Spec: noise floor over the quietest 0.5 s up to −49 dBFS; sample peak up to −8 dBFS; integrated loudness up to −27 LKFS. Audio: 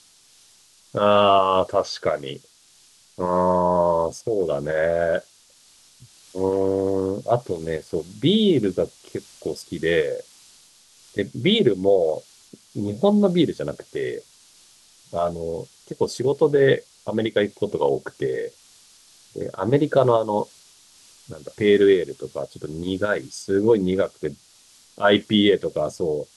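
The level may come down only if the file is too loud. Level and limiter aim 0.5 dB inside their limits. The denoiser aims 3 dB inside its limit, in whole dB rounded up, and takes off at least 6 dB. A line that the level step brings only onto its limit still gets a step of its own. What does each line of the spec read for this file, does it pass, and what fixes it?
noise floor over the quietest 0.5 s −55 dBFS: in spec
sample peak −5.5 dBFS: out of spec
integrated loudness −22.0 LKFS: out of spec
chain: level −5.5 dB

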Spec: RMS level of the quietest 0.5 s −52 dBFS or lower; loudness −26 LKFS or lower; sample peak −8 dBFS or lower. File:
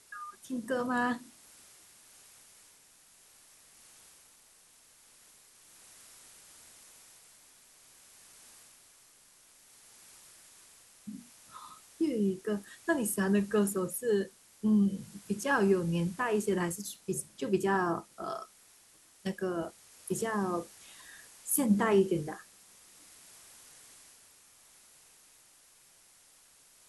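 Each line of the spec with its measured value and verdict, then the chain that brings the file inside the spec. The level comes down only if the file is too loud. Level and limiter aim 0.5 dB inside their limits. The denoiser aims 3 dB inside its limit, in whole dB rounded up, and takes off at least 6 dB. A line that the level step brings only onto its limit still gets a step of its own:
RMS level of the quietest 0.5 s −61 dBFS: in spec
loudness −31.5 LKFS: in spec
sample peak −12.5 dBFS: in spec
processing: no processing needed

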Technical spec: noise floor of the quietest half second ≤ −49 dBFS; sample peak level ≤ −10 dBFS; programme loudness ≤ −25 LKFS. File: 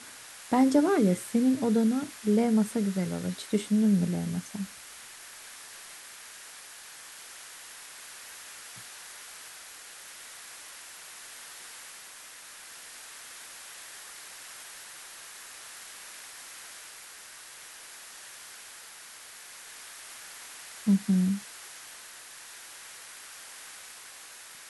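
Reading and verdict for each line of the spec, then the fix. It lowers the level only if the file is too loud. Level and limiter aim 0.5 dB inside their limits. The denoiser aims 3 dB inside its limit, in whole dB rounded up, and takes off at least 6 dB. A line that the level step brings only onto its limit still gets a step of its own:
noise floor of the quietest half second −48 dBFS: out of spec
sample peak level −12.0 dBFS: in spec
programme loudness −29.5 LKFS: in spec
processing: broadband denoise 6 dB, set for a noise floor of −48 dBFS

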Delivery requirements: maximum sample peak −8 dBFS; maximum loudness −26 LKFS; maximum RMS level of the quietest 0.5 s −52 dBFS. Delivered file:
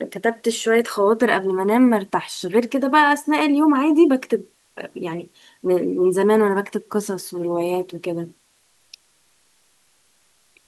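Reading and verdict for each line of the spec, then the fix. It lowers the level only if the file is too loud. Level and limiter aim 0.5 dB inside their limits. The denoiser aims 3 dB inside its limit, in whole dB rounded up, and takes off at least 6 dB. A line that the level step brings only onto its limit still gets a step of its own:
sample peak −4.0 dBFS: out of spec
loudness −19.5 LKFS: out of spec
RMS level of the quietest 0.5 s −61 dBFS: in spec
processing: level −7 dB

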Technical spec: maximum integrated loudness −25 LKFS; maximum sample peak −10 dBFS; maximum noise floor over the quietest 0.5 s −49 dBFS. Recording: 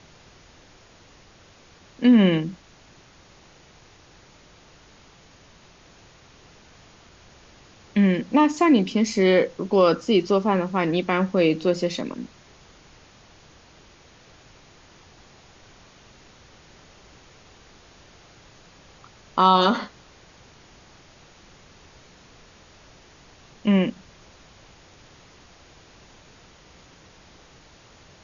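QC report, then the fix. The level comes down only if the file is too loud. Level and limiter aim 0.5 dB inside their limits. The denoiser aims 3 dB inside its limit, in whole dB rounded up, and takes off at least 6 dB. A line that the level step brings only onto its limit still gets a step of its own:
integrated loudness −21.0 LKFS: out of spec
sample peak −6.0 dBFS: out of spec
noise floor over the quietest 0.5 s −52 dBFS: in spec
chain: level −4.5 dB

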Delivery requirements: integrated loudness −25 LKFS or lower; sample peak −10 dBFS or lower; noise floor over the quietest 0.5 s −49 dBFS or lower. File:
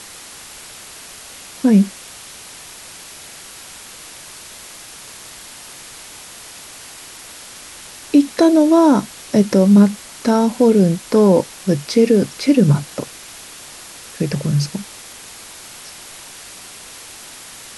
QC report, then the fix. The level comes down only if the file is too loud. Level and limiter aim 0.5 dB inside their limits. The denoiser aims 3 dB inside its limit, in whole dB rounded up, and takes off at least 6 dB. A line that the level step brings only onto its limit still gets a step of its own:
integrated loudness −15.0 LKFS: out of spec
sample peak −2.5 dBFS: out of spec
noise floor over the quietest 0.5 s −37 dBFS: out of spec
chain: broadband denoise 6 dB, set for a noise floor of −37 dBFS
level −10.5 dB

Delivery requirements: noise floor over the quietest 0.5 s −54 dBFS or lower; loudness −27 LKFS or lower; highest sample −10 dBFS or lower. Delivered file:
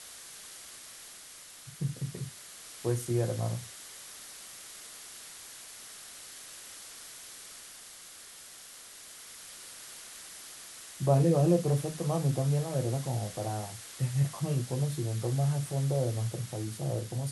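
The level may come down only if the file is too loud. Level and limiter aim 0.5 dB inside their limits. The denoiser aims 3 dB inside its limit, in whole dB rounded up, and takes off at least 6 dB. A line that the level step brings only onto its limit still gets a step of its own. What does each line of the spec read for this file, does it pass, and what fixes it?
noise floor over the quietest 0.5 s −50 dBFS: out of spec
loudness −31.5 LKFS: in spec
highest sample −13.0 dBFS: in spec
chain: broadband denoise 7 dB, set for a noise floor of −50 dBFS

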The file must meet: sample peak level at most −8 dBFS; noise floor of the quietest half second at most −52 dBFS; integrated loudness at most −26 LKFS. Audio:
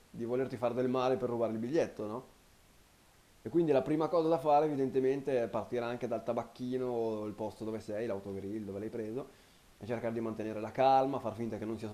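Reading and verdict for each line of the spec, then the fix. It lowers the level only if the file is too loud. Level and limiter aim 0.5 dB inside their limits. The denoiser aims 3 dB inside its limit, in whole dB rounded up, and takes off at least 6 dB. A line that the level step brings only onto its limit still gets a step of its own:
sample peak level −16.0 dBFS: in spec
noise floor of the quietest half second −64 dBFS: in spec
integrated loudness −34.0 LKFS: in spec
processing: no processing needed

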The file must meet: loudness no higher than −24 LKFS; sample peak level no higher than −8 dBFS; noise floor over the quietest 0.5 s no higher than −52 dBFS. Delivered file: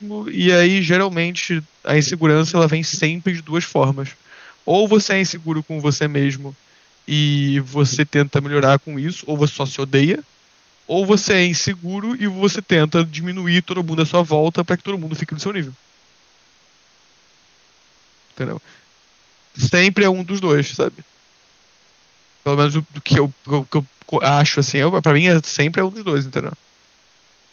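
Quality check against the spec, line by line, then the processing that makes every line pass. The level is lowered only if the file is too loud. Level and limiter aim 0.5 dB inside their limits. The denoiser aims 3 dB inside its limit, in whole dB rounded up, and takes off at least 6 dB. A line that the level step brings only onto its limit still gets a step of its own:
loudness −17.5 LKFS: out of spec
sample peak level −2.5 dBFS: out of spec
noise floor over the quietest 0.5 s −55 dBFS: in spec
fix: level −7 dB

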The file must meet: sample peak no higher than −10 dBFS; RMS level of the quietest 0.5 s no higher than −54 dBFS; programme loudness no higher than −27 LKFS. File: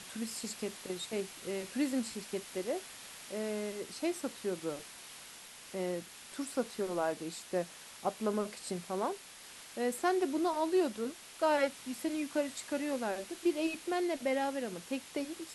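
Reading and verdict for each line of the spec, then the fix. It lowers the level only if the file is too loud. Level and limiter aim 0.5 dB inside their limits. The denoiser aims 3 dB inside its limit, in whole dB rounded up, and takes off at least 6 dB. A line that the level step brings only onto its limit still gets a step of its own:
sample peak −17.5 dBFS: in spec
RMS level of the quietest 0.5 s −52 dBFS: out of spec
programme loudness −36.0 LKFS: in spec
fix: broadband denoise 6 dB, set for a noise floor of −52 dBFS

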